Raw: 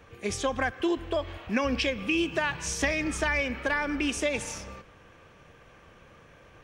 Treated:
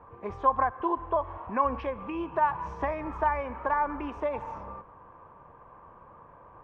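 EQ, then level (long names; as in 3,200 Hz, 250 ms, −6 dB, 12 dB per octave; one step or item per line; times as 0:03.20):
dynamic equaliser 230 Hz, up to −6 dB, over −42 dBFS, Q 0.77
low-pass with resonance 1,000 Hz, resonance Q 7.1
−2.5 dB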